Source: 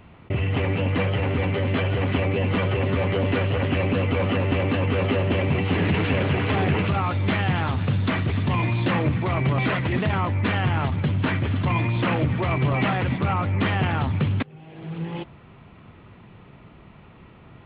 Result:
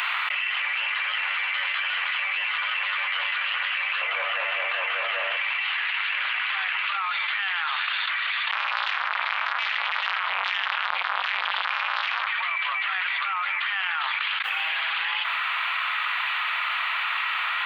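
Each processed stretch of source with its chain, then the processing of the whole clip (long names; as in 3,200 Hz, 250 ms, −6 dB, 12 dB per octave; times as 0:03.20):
0:04.01–0:05.37: low-pass filter 2,800 Hz 6 dB per octave + flat-topped bell 510 Hz +13.5 dB 1.1 octaves
0:08.51–0:12.27: parametric band 1,200 Hz −10.5 dB 1.7 octaves + mains-hum notches 50/100/150/200/250/300/350/400/450 Hz + saturating transformer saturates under 1,100 Hz
whole clip: inverse Chebyshev high-pass filter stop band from 370 Hz, stop band 60 dB; envelope flattener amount 100%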